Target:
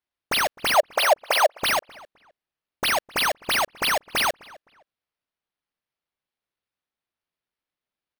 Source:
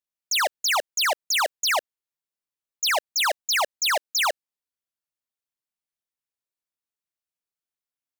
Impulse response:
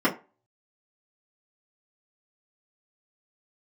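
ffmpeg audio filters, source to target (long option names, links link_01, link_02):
-filter_complex "[0:a]acrusher=samples=6:mix=1:aa=0.000001,asettb=1/sr,asplit=3[link_01][link_02][link_03];[link_01]atrim=end=0.744[link_04];[link_02]atrim=start=0.74:end=1.58,asetpts=PTS-STARTPTS,afade=type=in:duration=0.004:curve=qsin,afade=type=out:start_time=0.836:duration=0.004:curve=qsin,highpass=frequency=600:width_type=q:width=3.6[link_05];[link_03]atrim=start=1.576[link_06];[link_04][link_05]acrossfade=duration=0.004:curve1=hsin:curve2=qsin[link_07];[link_07][link_06]acrossfade=duration=0.004:curve1=qsin:curve2=hsin,asplit=2[link_08][link_09];[link_09]adelay=259,lowpass=frequency=2800:poles=1,volume=-21.5dB,asplit=2[link_10][link_11];[link_11]adelay=259,lowpass=frequency=2800:poles=1,volume=0.26[link_12];[link_08][link_10][link_12]amix=inputs=3:normalize=0"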